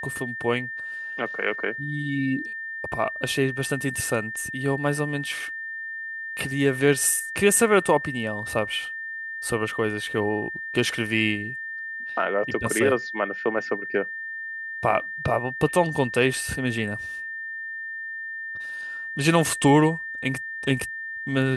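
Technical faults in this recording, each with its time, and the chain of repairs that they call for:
whistle 1,800 Hz −31 dBFS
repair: notch filter 1,800 Hz, Q 30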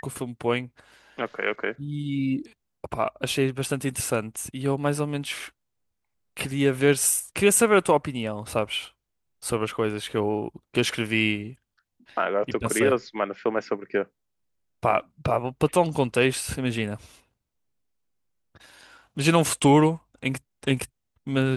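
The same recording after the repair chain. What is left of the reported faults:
none of them is left

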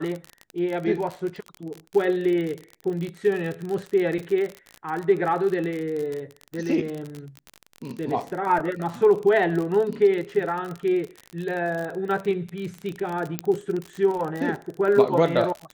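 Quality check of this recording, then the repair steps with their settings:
surface crackle 45 per second −28 dBFS
0:13.39: click −9 dBFS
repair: click removal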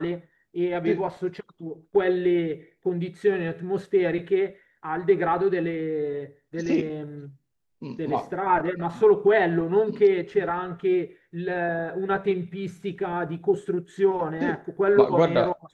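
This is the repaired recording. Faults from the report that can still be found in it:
none of them is left

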